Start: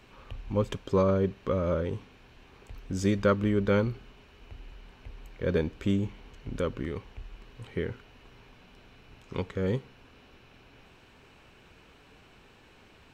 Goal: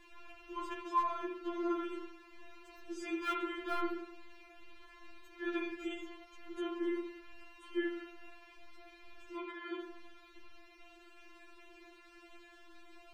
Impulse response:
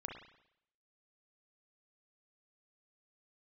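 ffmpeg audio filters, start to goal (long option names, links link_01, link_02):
-filter_complex "[0:a]asplit=3[link_01][link_02][link_03];[link_01]afade=type=out:start_time=9.38:duration=0.02[link_04];[link_02]highpass=330,lowpass=3600,afade=type=in:start_time=9.38:duration=0.02,afade=type=out:start_time=9.79:duration=0.02[link_05];[link_03]afade=type=in:start_time=9.79:duration=0.02[link_06];[link_04][link_05][link_06]amix=inputs=3:normalize=0,acrossover=split=700[link_07][link_08];[link_08]aeval=exprs='(mod(14.1*val(0)+1,2)-1)/14.1':channel_layout=same[link_09];[link_07][link_09]amix=inputs=2:normalize=0,acrossover=split=2700[link_10][link_11];[link_11]acompressor=threshold=-52dB:ratio=4:attack=1:release=60[link_12];[link_10][link_12]amix=inputs=2:normalize=0[link_13];[1:a]atrim=start_sample=2205,afade=type=out:start_time=0.45:duration=0.01,atrim=end_sample=20286[link_14];[link_13][link_14]afir=irnorm=-1:irlink=0,afftfilt=real='re*4*eq(mod(b,16),0)':imag='im*4*eq(mod(b,16),0)':win_size=2048:overlap=0.75,volume=4dB"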